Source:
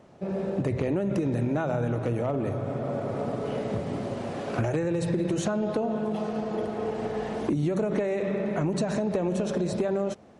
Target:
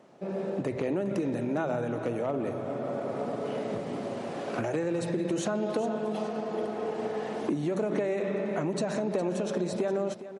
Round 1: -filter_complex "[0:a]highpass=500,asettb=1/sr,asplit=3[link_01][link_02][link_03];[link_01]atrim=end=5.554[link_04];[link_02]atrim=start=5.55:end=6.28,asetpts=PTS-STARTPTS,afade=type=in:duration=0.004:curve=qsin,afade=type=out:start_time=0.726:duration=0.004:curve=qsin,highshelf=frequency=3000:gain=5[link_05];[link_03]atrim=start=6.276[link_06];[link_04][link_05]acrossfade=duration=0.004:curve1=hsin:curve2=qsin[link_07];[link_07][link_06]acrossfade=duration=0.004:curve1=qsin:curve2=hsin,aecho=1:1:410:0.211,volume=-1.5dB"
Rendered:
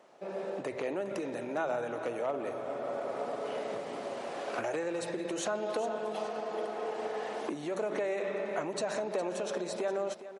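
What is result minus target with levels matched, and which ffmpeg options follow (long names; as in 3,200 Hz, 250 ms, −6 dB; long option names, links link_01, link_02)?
250 Hz band −5.5 dB
-filter_complex "[0:a]highpass=200,asettb=1/sr,asplit=3[link_01][link_02][link_03];[link_01]atrim=end=5.554[link_04];[link_02]atrim=start=5.55:end=6.28,asetpts=PTS-STARTPTS,afade=type=in:duration=0.004:curve=qsin,afade=type=out:start_time=0.726:duration=0.004:curve=qsin,highshelf=frequency=3000:gain=5[link_05];[link_03]atrim=start=6.276[link_06];[link_04][link_05]acrossfade=duration=0.004:curve1=hsin:curve2=qsin[link_07];[link_07][link_06]acrossfade=duration=0.004:curve1=qsin:curve2=hsin,aecho=1:1:410:0.211,volume=-1.5dB"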